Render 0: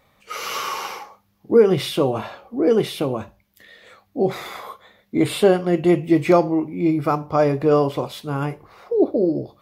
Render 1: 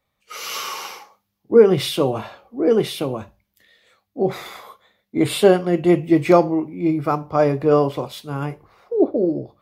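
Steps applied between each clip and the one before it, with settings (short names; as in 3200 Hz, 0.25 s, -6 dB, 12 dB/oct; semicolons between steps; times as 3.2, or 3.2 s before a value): three-band expander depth 40%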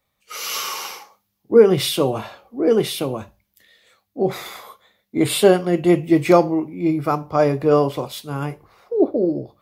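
high shelf 4900 Hz +6.5 dB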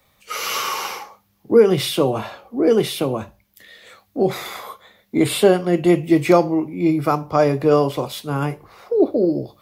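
three-band squash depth 40%; gain +1 dB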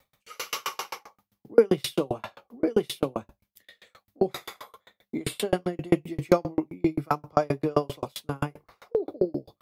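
dB-ramp tremolo decaying 7.6 Hz, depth 39 dB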